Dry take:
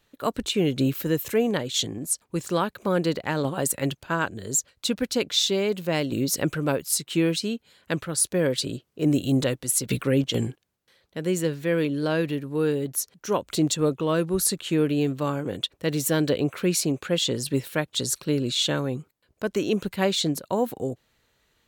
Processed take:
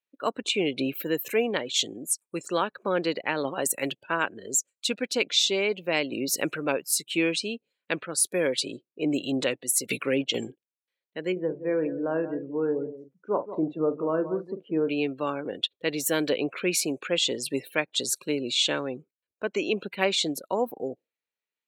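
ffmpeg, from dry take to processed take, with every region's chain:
ffmpeg -i in.wav -filter_complex "[0:a]asettb=1/sr,asplit=3[link_01][link_02][link_03];[link_01]atrim=end=11.324[link_04];[link_02]atrim=start=11.32:end=14.89,asetpts=PTS-STARTPTS,afade=type=in:duration=0.004:curve=qsin,afade=type=out:start_time=3.566:duration=0.004:curve=qsin,lowpass=1100,asplit=2[link_05][link_06];[link_06]adelay=44,volume=-10dB[link_07];[link_05][link_07]amix=inputs=2:normalize=0,atrim=end_sample=157437,aecho=1:1:176:0.251,atrim=end_sample=157437[link_08];[link_03]atrim=start=14.886[link_09];[link_04][link_08]acrossfade=duration=0.004:curve1=hsin:curve2=qsin[link_10];[link_10][link_09]acrossfade=duration=0.004:curve1=qsin:curve2=hsin,afftdn=noise_reduction=27:noise_floor=-42,highpass=300,equalizer=frequency=2400:width_type=o:width=0.44:gain=9,volume=-1dB" out.wav

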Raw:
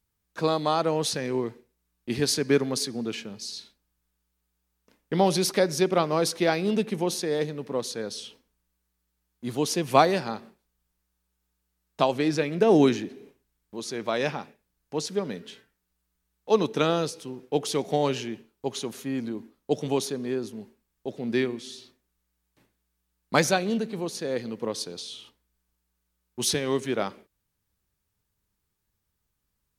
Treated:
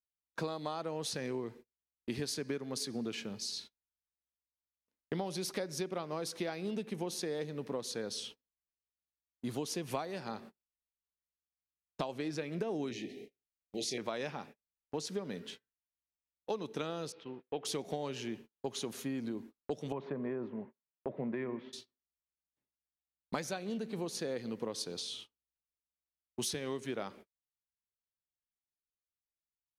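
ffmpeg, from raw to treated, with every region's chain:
ffmpeg -i in.wav -filter_complex "[0:a]asettb=1/sr,asplit=3[link_01][link_02][link_03];[link_01]atrim=end=12.914[link_04];[link_02]atrim=start=12.91:end=13.98,asetpts=PTS-STARTPTS,afade=type=in:duration=0.004:curve=qsin,afade=type=out:start_time=1.066:duration=0.004:curve=qsin,asuperstop=centerf=1200:order=20:qfactor=1.2,equalizer=frequency=2900:width_type=o:width=2.8:gain=6.5,asplit=2[link_05][link_06];[link_06]adelay=24,volume=-8.5dB[link_07];[link_05][link_07]amix=inputs=2:normalize=0,atrim=end_sample=47187[link_08];[link_03]atrim=start=13.976[link_09];[link_04][link_08]acrossfade=duration=0.004:curve1=hsin:curve2=qsin[link_10];[link_10][link_09]acrossfade=duration=0.004:curve1=qsin:curve2=hsin,asettb=1/sr,asplit=3[link_11][link_12][link_13];[link_11]atrim=end=17.124[link_14];[link_12]atrim=start=17.12:end=17.65,asetpts=PTS-STARTPTS,afade=type=in:duration=0.004:curve=qsin,afade=type=out:start_time=0.526:duration=0.004:curve=qsin,lowpass=frequency=3300:width=0.5412,lowpass=frequency=3300:width=1.3066,lowshelf=frequency=400:gain=-9[link_15];[link_13]atrim=start=17.646[link_16];[link_14][link_15]acrossfade=duration=0.004:curve1=hsin:curve2=qsin[link_17];[link_17][link_16]acrossfade=duration=0.004:curve1=qsin:curve2=hsin,asettb=1/sr,asplit=3[link_18][link_19][link_20];[link_18]atrim=end=19.924[link_21];[link_19]atrim=start=19.92:end=21.73,asetpts=PTS-STARTPTS,afade=type=in:duration=0.004:curve=qsin,afade=type=out:start_time=1.806:duration=0.004:curve=qsin,acompressor=threshold=-26dB:ratio=4:attack=3.2:release=140:knee=1:detection=peak,highpass=140,equalizer=frequency=140:width_type=q:width=4:gain=9,equalizer=frequency=590:width_type=q:width=4:gain=7,equalizer=frequency=1000:width_type=q:width=4:gain=9,equalizer=frequency=2000:width_type=q:width=4:gain=3,lowpass=frequency=2200:width=0.5412,lowpass=frequency=2200:width=1.3066[link_22];[link_20]atrim=start=21.726[link_23];[link_21][link_22]acrossfade=duration=0.004:curve1=hsin:curve2=qsin[link_24];[link_24][link_23]acrossfade=duration=0.004:curve1=qsin:curve2=hsin,agate=range=-28dB:threshold=-45dB:ratio=16:detection=peak,acompressor=threshold=-31dB:ratio=12,volume=-2.5dB" out.wav

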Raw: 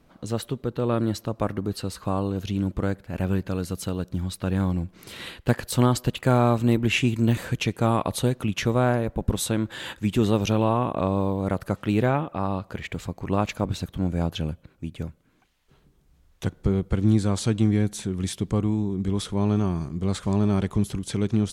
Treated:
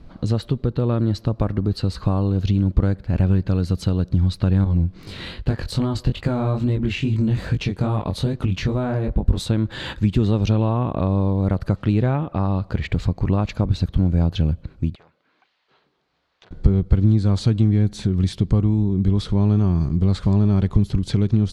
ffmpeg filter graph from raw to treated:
ffmpeg -i in.wav -filter_complex "[0:a]asettb=1/sr,asplit=3[link_01][link_02][link_03];[link_01]atrim=end=4.644[link_04];[link_02]atrim=start=4.64:end=9.4,asetpts=PTS-STARTPTS,afade=type=in:duration=0.004:curve=qsin,afade=type=out:start_time=4.756:duration=0.004:curve=qsin,acompressor=threshold=-24dB:ratio=1.5:attack=3.2:release=140:knee=1:detection=peak,flanger=delay=19:depth=4.4:speed=2.4[link_05];[link_03]atrim=start=9.396[link_06];[link_04][link_05]acrossfade=duration=0.004:curve1=hsin:curve2=qsin[link_07];[link_07][link_06]acrossfade=duration=0.004:curve1=qsin:curve2=hsin,asettb=1/sr,asplit=3[link_08][link_09][link_10];[link_08]atrim=end=14.954[link_11];[link_09]atrim=start=14.95:end=16.51,asetpts=PTS-STARTPTS,afade=type=in:duration=0.004:curve=qsin,afade=type=out:start_time=1.556:duration=0.004:curve=qsin,volume=31.5dB,asoftclip=hard,volume=-31.5dB,highpass=670,lowpass=4200,acompressor=threshold=-58dB:ratio=3:attack=3.2:release=140:knee=1:detection=peak[link_12];[link_10]atrim=start=16.506[link_13];[link_11][link_12]acrossfade=duration=0.004:curve1=hsin:curve2=qsin[link_14];[link_14][link_13]acrossfade=duration=0.004:curve1=qsin:curve2=hsin,equalizer=frequency=4400:width_type=o:width=0.51:gain=8.5,acompressor=threshold=-31dB:ratio=2.5,aemphasis=mode=reproduction:type=bsi,volume=6dB" out.wav

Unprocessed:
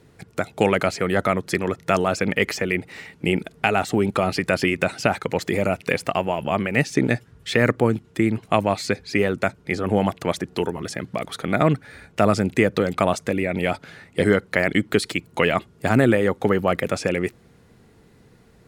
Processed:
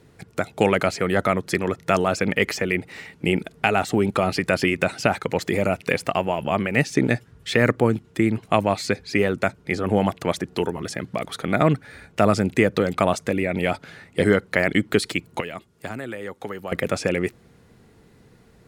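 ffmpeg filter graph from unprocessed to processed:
ffmpeg -i in.wav -filter_complex "[0:a]asettb=1/sr,asplit=3[link_01][link_02][link_03];[link_01]atrim=end=15.404[link_04];[link_02]atrim=start=15.4:end=16.72,asetpts=PTS-STARTPTS,afade=type=in:duration=0.004:curve=qsin,afade=type=out:start_time=1.316:duration=0.004:curve=qsin,lowshelf=frequency=500:gain=-10.5,acrossover=split=470|5200[link_05][link_06][link_07];[link_05]acompressor=threshold=-33dB:ratio=4[link_08];[link_06]acompressor=threshold=-35dB:ratio=4[link_09];[link_07]acompressor=threshold=-55dB:ratio=4[link_10];[link_08][link_09][link_10]amix=inputs=3:normalize=0[link_11];[link_03]atrim=start=16.716[link_12];[link_04][link_11]acrossfade=duration=0.004:curve1=hsin:curve2=qsin[link_13];[link_13][link_12]acrossfade=duration=0.004:curve1=qsin:curve2=hsin" out.wav

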